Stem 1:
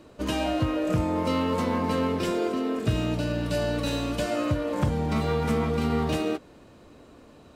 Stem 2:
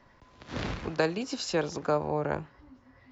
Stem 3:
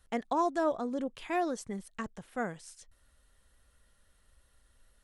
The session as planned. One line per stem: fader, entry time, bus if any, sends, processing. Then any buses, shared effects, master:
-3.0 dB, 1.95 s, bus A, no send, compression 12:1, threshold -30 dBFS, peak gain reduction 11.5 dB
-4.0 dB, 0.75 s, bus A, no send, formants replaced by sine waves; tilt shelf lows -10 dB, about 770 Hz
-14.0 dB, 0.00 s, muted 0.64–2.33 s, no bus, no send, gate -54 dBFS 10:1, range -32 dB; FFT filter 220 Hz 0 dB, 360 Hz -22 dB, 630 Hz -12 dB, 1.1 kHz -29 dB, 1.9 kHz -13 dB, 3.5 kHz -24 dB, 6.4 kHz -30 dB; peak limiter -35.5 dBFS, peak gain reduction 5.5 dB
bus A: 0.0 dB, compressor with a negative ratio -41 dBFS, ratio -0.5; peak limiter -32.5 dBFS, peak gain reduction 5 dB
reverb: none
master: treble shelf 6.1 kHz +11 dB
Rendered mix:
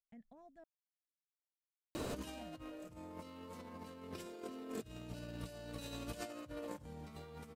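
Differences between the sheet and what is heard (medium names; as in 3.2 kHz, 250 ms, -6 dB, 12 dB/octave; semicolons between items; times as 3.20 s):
stem 1: missing compression 12:1, threshold -30 dBFS, peak gain reduction 11.5 dB; stem 2: muted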